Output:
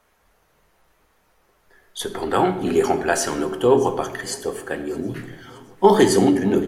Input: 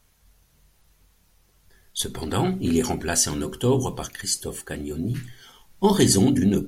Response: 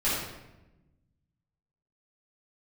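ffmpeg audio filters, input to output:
-filter_complex "[0:a]acrossover=split=300 2100:gain=0.126 1 0.2[a][b][c];[a][b][c]amix=inputs=3:normalize=0,aecho=1:1:618|1236|1854|2472:0.0631|0.0347|0.0191|0.0105,asplit=2[d][e];[1:a]atrim=start_sample=2205[f];[e][f]afir=irnorm=-1:irlink=0,volume=-18.5dB[g];[d][g]amix=inputs=2:normalize=0,volume=8dB"

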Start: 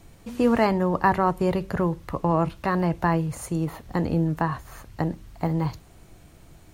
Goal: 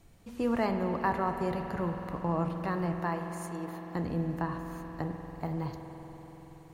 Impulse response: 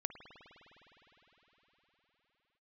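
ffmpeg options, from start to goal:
-filter_complex "[0:a]asettb=1/sr,asplit=3[a][b][c];[a]atrim=end=3.014[d];[b]atrim=start=3.01:end=3.95,asetpts=PTS-STARTPTS,afade=t=in:d=0.004:c=qsin,afade=t=out:st=0.936:d=0.004:c=qsin,highpass=350[e];[c]atrim=start=3.946[f];[d][e]acrossfade=d=0.004:c1=hsin:c2=qsin[g];[g][f]acrossfade=d=0.004:c1=qsin:c2=hsin[h];[1:a]atrim=start_sample=2205,asetrate=48510,aresample=44100[i];[h][i]afir=irnorm=-1:irlink=0,volume=-6.5dB"

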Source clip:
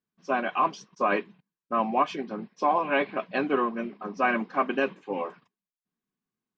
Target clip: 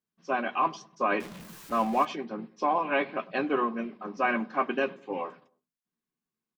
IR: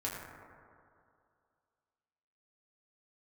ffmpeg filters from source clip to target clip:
-filter_complex "[0:a]asettb=1/sr,asplit=3[a][b][c];[a]atrim=end=1.204[d];[b]atrim=start=1.2:end=2.05,asetpts=PTS-STARTPTS,afade=t=in:d=0.004:c=qsin,afade=t=out:st=0.846:d=0.004:c=qsin,aeval=exprs='val(0)+0.5*0.0158*sgn(val(0))':c=same[e];[c]atrim=start=2.046[f];[d][e]acrossfade=d=0.004:c1=hsin:c2=qsin[g];[g][f]acrossfade=d=0.004:c1=qsin:c2=hsin,bandreject=f=50:t=h:w=6,bandreject=f=100:t=h:w=6,bandreject=f=150:t=h:w=6,bandreject=f=200:t=h:w=6,bandreject=f=250:t=h:w=6,asplit=2[h][i];[i]adelay=13,volume=-12dB[j];[h][j]amix=inputs=2:normalize=0,asplit=2[k][l];[l]adelay=100,lowpass=f=1.1k:p=1,volume=-20dB,asplit=2[m][n];[n]adelay=100,lowpass=f=1.1k:p=1,volume=0.41,asplit=2[o][p];[p]adelay=100,lowpass=f=1.1k:p=1,volume=0.41[q];[k][m][o][q]amix=inputs=4:normalize=0,volume=-2dB"

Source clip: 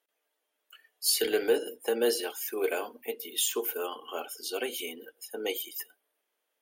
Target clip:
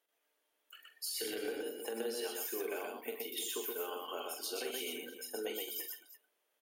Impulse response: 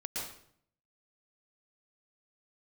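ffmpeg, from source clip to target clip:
-af "alimiter=limit=-22.5dB:level=0:latency=1,acompressor=threshold=-36dB:ratio=6,aecho=1:1:44|123|173|341:0.398|0.708|0.168|0.178,volume=-2dB"

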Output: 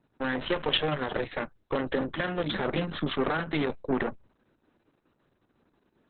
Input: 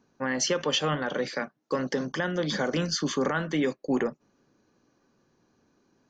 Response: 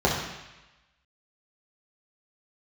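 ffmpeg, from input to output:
-af "aeval=exprs='0.188*(cos(1*acos(clip(val(0)/0.188,-1,1)))-cos(1*PI/2))+0.0119*(cos(4*acos(clip(val(0)/0.188,-1,1)))-cos(4*PI/2))+0.0335*(cos(6*acos(clip(val(0)/0.188,-1,1)))-cos(6*PI/2))+0.00211*(cos(7*acos(clip(val(0)/0.188,-1,1)))-cos(7*PI/2))+0.00133*(cos(8*acos(clip(val(0)/0.188,-1,1)))-cos(8*PI/2))':c=same" -ar 48000 -c:a libopus -b:a 6k

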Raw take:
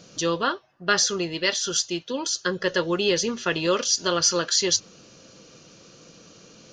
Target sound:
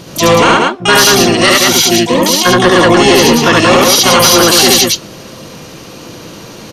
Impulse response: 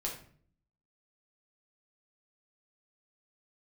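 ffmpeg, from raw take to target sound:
-filter_complex "[0:a]highshelf=f=5k:g=-7,asplit=3[a][b][c];[b]asetrate=29433,aresample=44100,atempo=1.49831,volume=-4dB[d];[c]asetrate=88200,aresample=44100,atempo=0.5,volume=-7dB[e];[a][d][e]amix=inputs=3:normalize=0,aecho=1:1:72.89|183.7:0.891|0.562,apsyclip=17dB,volume=-1.5dB"

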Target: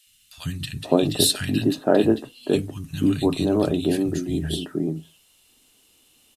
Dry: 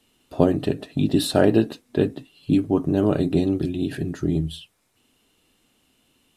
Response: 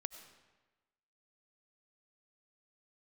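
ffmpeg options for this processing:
-filter_complex "[0:a]highshelf=f=2.8k:g=11,acrossover=split=160|1600[a][b][c];[a]adelay=60[d];[b]adelay=520[e];[d][e][c]amix=inputs=3:normalize=0"

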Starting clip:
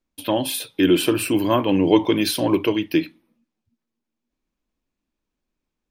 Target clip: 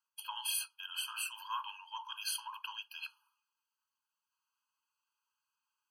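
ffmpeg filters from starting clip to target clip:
-af "areverse,acompressor=threshold=-33dB:ratio=5,areverse,afftfilt=real='re*eq(mod(floor(b*sr/1024/830),2),1)':imag='im*eq(mod(floor(b*sr/1024/830),2),1)':win_size=1024:overlap=0.75,volume=2.5dB"

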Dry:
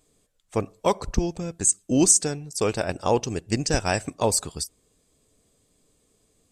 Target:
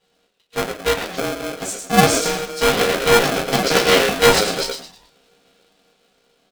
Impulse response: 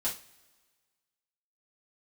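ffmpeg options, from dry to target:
-filter_complex "[0:a]highpass=80,acrossover=split=400|2300[a][b][c];[b]aeval=exprs='abs(val(0))':c=same[d];[a][d][c]amix=inputs=3:normalize=0,asettb=1/sr,asplit=3[e][f][g];[e]atrim=end=0.874[h];[f]atrim=start=0.87:end=1.57,asetpts=PTS-STARTPTS,afade=t=in:d=0.004:c=qsin,afade=t=out:st=0.696:d=0.004:c=qsin,tremolo=f=160:d=0.4[i];[g]atrim=start=1.566[j];[h][i]acrossfade=d=0.004:c1=hsin:c2=qsin[k];[k][j]acrossfade=d=0.004:c1=qsin:c2=hsin,dynaudnorm=f=460:g=7:m=11.5dB,lowpass=f=3.4k:t=q:w=2.8,asplit=5[l][m][n][o][p];[m]adelay=107,afreqshift=-150,volume=-5.5dB[q];[n]adelay=214,afreqshift=-300,volume=-14.6dB[r];[o]adelay=321,afreqshift=-450,volume=-23.7dB[s];[p]adelay=428,afreqshift=-600,volume=-32.9dB[t];[l][q][r][s][t]amix=inputs=5:normalize=0[u];[1:a]atrim=start_sample=2205,atrim=end_sample=3087[v];[u][v]afir=irnorm=-1:irlink=0,aeval=exprs='val(0)*sgn(sin(2*PI*470*n/s))':c=same,volume=-1dB"

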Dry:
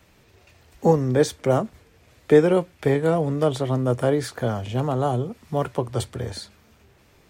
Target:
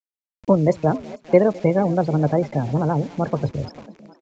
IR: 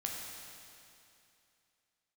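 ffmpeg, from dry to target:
-filter_complex "[0:a]lowshelf=f=410:g=8,afftdn=nr=31:nf=-26,asplit=2[a][b];[b]aecho=0:1:351|702|1053:0.0668|0.0307|0.0141[c];[a][c]amix=inputs=2:normalize=0,asetrate=30296,aresample=44100,atempo=1.45565,acrusher=bits=6:mix=0:aa=0.000001,asetrate=76440,aresample=44100,equalizer=f=2.3k:w=3.9:g=5,asplit=2[d][e];[e]asplit=3[f][g][h];[f]adelay=445,afreqshift=67,volume=-19dB[i];[g]adelay=890,afreqshift=134,volume=-27.9dB[j];[h]adelay=1335,afreqshift=201,volume=-36.7dB[k];[i][j][k]amix=inputs=3:normalize=0[l];[d][l]amix=inputs=2:normalize=0,aresample=16000,aresample=44100,volume=-2.5dB"

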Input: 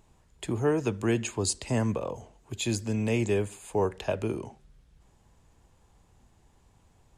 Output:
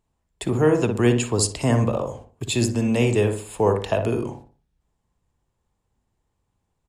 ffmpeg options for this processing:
-filter_complex "[0:a]agate=range=-20dB:threshold=-51dB:ratio=16:detection=peak,asplit=2[a][b];[b]adelay=61,lowpass=f=1.2k:p=1,volume=-4.5dB,asplit=2[c][d];[d]adelay=61,lowpass=f=1.2k:p=1,volume=0.41,asplit=2[e][f];[f]adelay=61,lowpass=f=1.2k:p=1,volume=0.41,asplit=2[g][h];[h]adelay=61,lowpass=f=1.2k:p=1,volume=0.41,asplit=2[i][j];[j]adelay=61,lowpass=f=1.2k:p=1,volume=0.41[k];[a][c][e][g][i][k]amix=inputs=6:normalize=0,asetrate=45938,aresample=44100,volume=6.5dB"

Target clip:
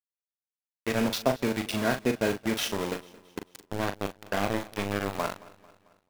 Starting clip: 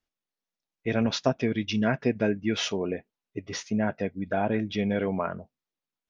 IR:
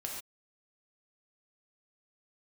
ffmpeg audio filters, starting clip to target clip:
-filter_complex "[0:a]highpass=f=170:p=1,asettb=1/sr,asplit=3[a][b][c];[a]atrim=end=3.404[d];[b]atrim=start=3.4:end=5.15,asetpts=PTS-STARTPTS,afade=t=in:d=0.004:c=qsin,afade=t=out:st=1.746:d=0.004:c=qsin,aeval=exprs='0.2*(cos(1*acos(clip(val(0)/0.2,-1,1)))-cos(1*PI/2))+0.00708*(cos(3*acos(clip(val(0)/0.2,-1,1)))-cos(3*PI/2))+0.02*(cos(7*acos(clip(val(0)/0.2,-1,1)))-cos(7*PI/2))':c=same[e];[c]atrim=start=5.146[f];[d][e]acrossfade=d=0.004:c1=hsin:c2=qsin[g];[g][f]acrossfade=d=0.004:c1=qsin:c2=hsin,aeval=exprs='val(0)*gte(abs(val(0)),0.0422)':c=same,asplit=2[h][i];[i]adelay=40,volume=-8dB[j];[h][j]amix=inputs=2:normalize=0,aecho=1:1:222|444|666|888:0.0891|0.0455|0.0232|0.0118"

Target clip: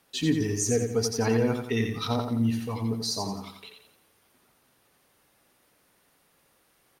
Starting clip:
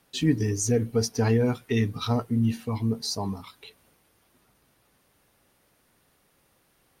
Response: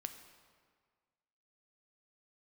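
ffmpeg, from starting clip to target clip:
-af "lowshelf=f=200:g=-7.5,aecho=1:1:87|174|261|348|435:0.501|0.2|0.0802|0.0321|0.0128"

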